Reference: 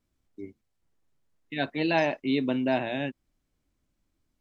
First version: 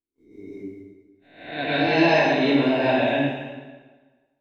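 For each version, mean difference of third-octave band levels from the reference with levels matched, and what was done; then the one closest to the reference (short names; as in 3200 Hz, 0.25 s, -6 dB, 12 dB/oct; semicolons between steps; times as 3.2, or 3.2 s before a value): 6.5 dB: spectral swells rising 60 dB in 0.66 s; gate -58 dBFS, range -24 dB; plate-style reverb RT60 1.4 s, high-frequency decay 0.85×, pre-delay 0.11 s, DRR -10 dB; gain -3.5 dB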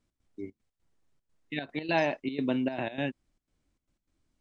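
3.0 dB: vocal rider 0.5 s; step gate "x.xxx.x.xxx" 151 bpm -12 dB; downsampling 22050 Hz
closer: second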